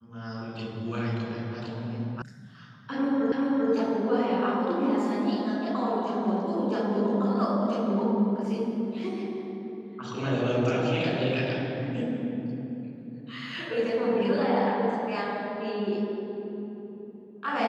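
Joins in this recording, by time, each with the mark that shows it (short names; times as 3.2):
2.22 sound cut off
3.32 repeat of the last 0.39 s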